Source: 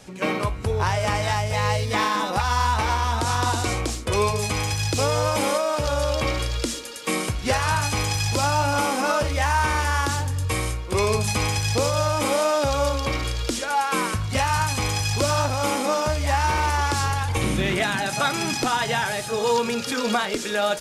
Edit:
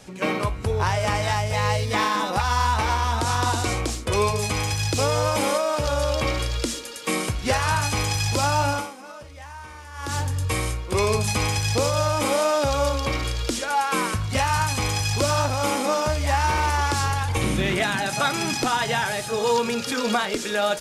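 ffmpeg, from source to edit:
ffmpeg -i in.wav -filter_complex "[0:a]asplit=3[link_01][link_02][link_03];[link_01]atrim=end=8.98,asetpts=PTS-STARTPTS,afade=type=out:start_time=8.7:duration=0.28:curve=qua:silence=0.11885[link_04];[link_02]atrim=start=8.98:end=9.89,asetpts=PTS-STARTPTS,volume=-18.5dB[link_05];[link_03]atrim=start=9.89,asetpts=PTS-STARTPTS,afade=type=in:duration=0.28:curve=qua:silence=0.11885[link_06];[link_04][link_05][link_06]concat=n=3:v=0:a=1" out.wav

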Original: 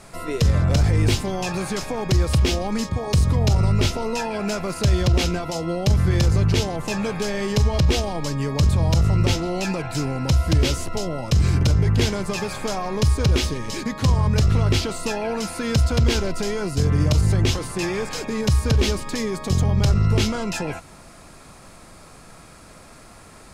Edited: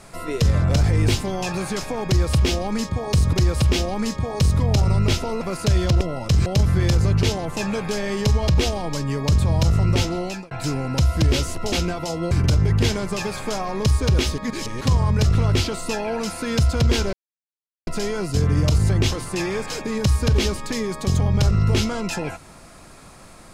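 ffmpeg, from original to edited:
ffmpeg -i in.wav -filter_complex "[0:a]asplit=11[link_01][link_02][link_03][link_04][link_05][link_06][link_07][link_08][link_09][link_10][link_11];[link_01]atrim=end=3.332[link_12];[link_02]atrim=start=2.058:end=4.142[link_13];[link_03]atrim=start=4.578:end=5.182[link_14];[link_04]atrim=start=11.028:end=11.482[link_15];[link_05]atrim=start=5.768:end=9.82,asetpts=PTS-STARTPTS,afade=type=out:start_time=3.722:duration=0.33[link_16];[link_06]atrim=start=9.82:end=11.032,asetpts=PTS-STARTPTS,afade=type=in:duration=0.004:curve=hsin[link_17];[link_07]atrim=start=5.178:end=5.772[link_18];[link_08]atrim=start=11.478:end=13.552[link_19];[link_09]atrim=start=13.548:end=13.982,asetpts=PTS-STARTPTS,areverse[link_20];[link_10]atrim=start=13.978:end=16.3,asetpts=PTS-STARTPTS,afade=type=out:start_time=2.318:duration=0.004:curve=hsin,apad=pad_dur=0.74[link_21];[link_11]atrim=start=16.3,asetpts=PTS-STARTPTS,afade=type=in:duration=0.004:curve=hsin[link_22];[link_12][link_13]acrossfade=duration=0.004:curve1=hsin:curve2=hsin[link_23];[link_23][link_14]acrossfade=duration=0.004:curve1=hsin:curve2=hsin[link_24];[link_24][link_15]acrossfade=duration=0.004:curve1=hsin:curve2=hsin[link_25];[link_16][link_17]concat=n=2:v=0:a=1[link_26];[link_25][link_26]acrossfade=duration=0.004:curve1=hsin:curve2=hsin[link_27];[link_27][link_18]acrossfade=duration=0.004:curve1=hsin:curve2=hsin[link_28];[link_28][link_19]acrossfade=duration=0.004:curve1=hsin:curve2=hsin[link_29];[link_29][link_20]acrossfade=duration=0.004:curve1=hsin:curve2=hsin[link_30];[link_21][link_22]concat=n=2:v=0:a=1[link_31];[link_30][link_31]acrossfade=duration=0.004:curve1=hsin:curve2=hsin" out.wav

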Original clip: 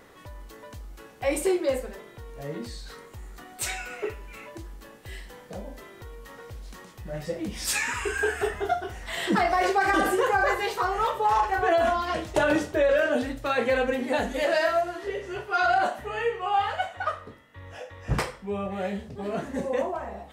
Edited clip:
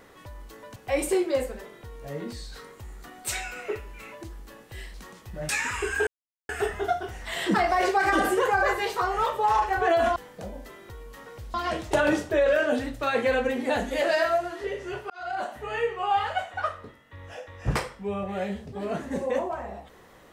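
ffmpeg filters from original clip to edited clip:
ffmpeg -i in.wav -filter_complex "[0:a]asplit=8[link_01][link_02][link_03][link_04][link_05][link_06][link_07][link_08];[link_01]atrim=end=0.762[link_09];[link_02]atrim=start=1.098:end=5.282[link_10];[link_03]atrim=start=6.658:end=7.212[link_11];[link_04]atrim=start=7.718:end=8.3,asetpts=PTS-STARTPTS,afade=type=out:start_time=0.578:duration=0.004:curve=hsin,apad=pad_dur=0.42[link_12];[link_05]atrim=start=8.3:end=11.972,asetpts=PTS-STARTPTS,afade=type=in:duration=0.004:curve=hsin[link_13];[link_06]atrim=start=5.278:end=6.662[link_14];[link_07]atrim=start=11.968:end=15.53,asetpts=PTS-STARTPTS,afade=type=out:start_time=3.558:duration=0.004:curve=hsin[link_15];[link_08]atrim=start=15.53,asetpts=PTS-STARTPTS,afade=type=in:duration=0.64[link_16];[link_09][link_10]acrossfade=duration=0.004:curve1=hsin:curve2=hsin[link_17];[link_17][link_11]acrossfade=duration=0.004:curve1=hsin:curve2=hsin[link_18];[link_12][link_13]concat=n=2:v=0:a=1[link_19];[link_18][link_19]acrossfade=duration=0.004:curve1=hsin:curve2=hsin[link_20];[link_20][link_14]acrossfade=duration=0.004:curve1=hsin:curve2=hsin[link_21];[link_15][link_16]concat=n=2:v=0:a=1[link_22];[link_21][link_22]acrossfade=duration=0.004:curve1=hsin:curve2=hsin" out.wav

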